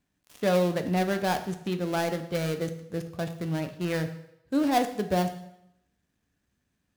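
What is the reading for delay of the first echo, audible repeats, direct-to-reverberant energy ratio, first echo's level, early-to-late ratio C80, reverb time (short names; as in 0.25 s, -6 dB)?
none, none, 7.0 dB, none, 14.0 dB, 0.80 s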